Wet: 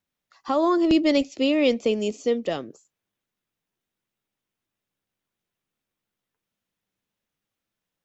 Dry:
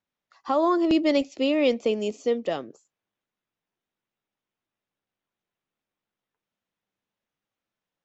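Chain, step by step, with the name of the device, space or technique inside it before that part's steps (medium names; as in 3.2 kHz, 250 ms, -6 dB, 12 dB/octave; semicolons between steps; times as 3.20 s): smiley-face EQ (bass shelf 140 Hz +5 dB; peaking EQ 830 Hz -3 dB 1.5 oct; treble shelf 5.6 kHz +4.5 dB); trim +2 dB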